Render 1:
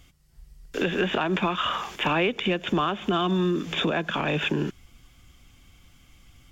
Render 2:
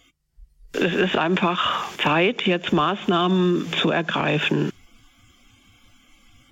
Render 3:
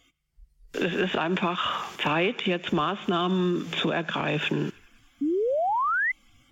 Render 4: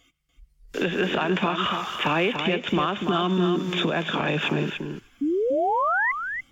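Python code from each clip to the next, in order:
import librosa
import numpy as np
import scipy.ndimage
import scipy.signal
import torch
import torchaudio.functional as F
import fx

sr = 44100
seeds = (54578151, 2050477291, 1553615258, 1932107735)

y1 = fx.noise_reduce_blind(x, sr, reduce_db=16)
y1 = y1 * librosa.db_to_amplitude(4.5)
y2 = fx.echo_banded(y1, sr, ms=100, feedback_pct=64, hz=1800.0, wet_db=-19.0)
y2 = fx.spec_paint(y2, sr, seeds[0], shape='rise', start_s=5.21, length_s=0.91, low_hz=270.0, high_hz=2100.0, level_db=-19.0)
y2 = y2 * librosa.db_to_amplitude(-5.5)
y3 = y2 + 10.0 ** (-7.0 / 20.0) * np.pad(y2, (int(290 * sr / 1000.0), 0))[:len(y2)]
y3 = y3 * librosa.db_to_amplitude(1.5)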